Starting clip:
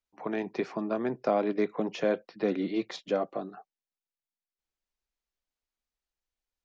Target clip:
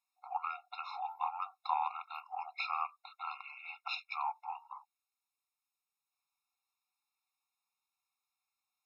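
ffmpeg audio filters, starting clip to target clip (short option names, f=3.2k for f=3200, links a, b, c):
-af "asetrate=33075,aresample=44100,afftfilt=real='re*eq(mod(floor(b*sr/1024/710),2),1)':imag='im*eq(mod(floor(b*sr/1024/710),2),1)':win_size=1024:overlap=0.75,volume=6dB"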